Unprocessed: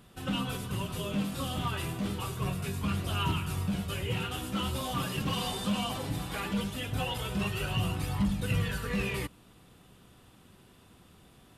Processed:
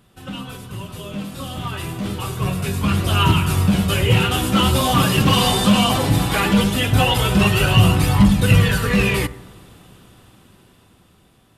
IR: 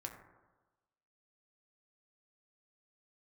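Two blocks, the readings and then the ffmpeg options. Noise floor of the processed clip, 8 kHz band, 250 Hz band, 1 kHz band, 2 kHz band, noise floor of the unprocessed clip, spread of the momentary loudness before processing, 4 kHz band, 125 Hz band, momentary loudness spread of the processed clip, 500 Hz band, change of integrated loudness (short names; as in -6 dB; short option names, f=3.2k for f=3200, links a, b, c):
-54 dBFS, +15.0 dB, +14.5 dB, +15.0 dB, +15.0 dB, -58 dBFS, 4 LU, +15.0 dB, +15.5 dB, 16 LU, +15.0 dB, +15.5 dB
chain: -filter_complex "[0:a]dynaudnorm=f=780:g=7:m=16dB,asplit=2[a][b];[1:a]atrim=start_sample=2205[c];[b][c]afir=irnorm=-1:irlink=0,volume=-5.5dB[d];[a][d]amix=inputs=2:normalize=0,volume=-1.5dB"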